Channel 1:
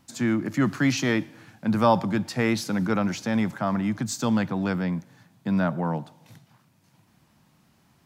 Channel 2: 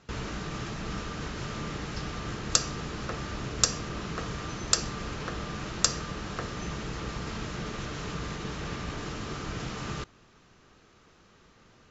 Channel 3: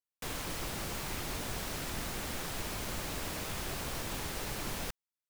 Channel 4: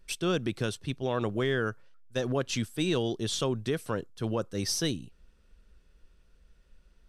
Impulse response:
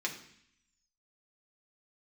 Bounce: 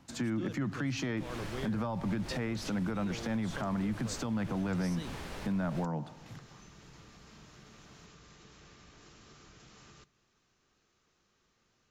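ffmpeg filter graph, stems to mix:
-filter_complex "[0:a]lowpass=f=2.9k:p=1,volume=1.5dB[a];[1:a]highshelf=f=4.4k:g=10.5,acompressor=threshold=-37dB:ratio=4,volume=-18dB,asplit=2[b][c];[c]volume=-14dB[d];[2:a]aemphasis=mode=reproduction:type=50fm,adelay=950,volume=-3dB[e];[3:a]adelay=150,volume=-11.5dB[f];[4:a]atrim=start_sample=2205[g];[d][g]afir=irnorm=-1:irlink=0[h];[a][b][e][f][h]amix=inputs=5:normalize=0,acrossover=split=140[i][j];[j]acompressor=threshold=-25dB:ratio=6[k];[i][k]amix=inputs=2:normalize=0,alimiter=level_in=1.5dB:limit=-24dB:level=0:latency=1:release=161,volume=-1.5dB"

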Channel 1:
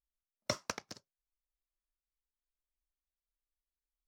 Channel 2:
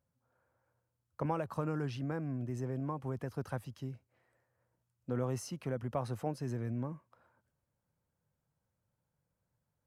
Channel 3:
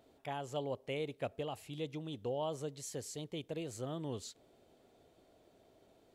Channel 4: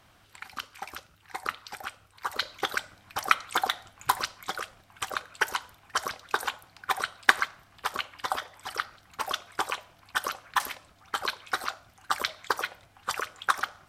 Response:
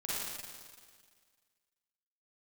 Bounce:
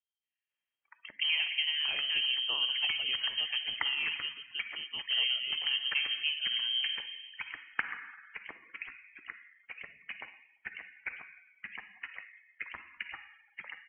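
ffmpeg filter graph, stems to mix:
-filter_complex "[0:a]lowpass=1.5k,adelay=550,volume=-12.5dB[a];[1:a]volume=1.5dB,asplit=2[b][c];[c]volume=-7.5dB[d];[2:a]adelay=1600,volume=2.5dB,asplit=2[e][f];[f]volume=-16.5dB[g];[3:a]adelay=500,volume=-15dB,asplit=2[h][i];[i]volume=-7.5dB[j];[4:a]atrim=start_sample=2205[k];[d][j]amix=inputs=2:normalize=0[l];[l][k]afir=irnorm=-1:irlink=0[m];[g]aecho=0:1:142|284|426|568|710|852|994:1|0.51|0.26|0.133|0.0677|0.0345|0.0176[n];[a][b][e][h][m][n]amix=inputs=6:normalize=0,afftdn=nr=22:nf=-52,lowpass=f=2.8k:t=q:w=0.5098,lowpass=f=2.8k:t=q:w=0.6013,lowpass=f=2.8k:t=q:w=0.9,lowpass=f=2.8k:t=q:w=2.563,afreqshift=-3300"

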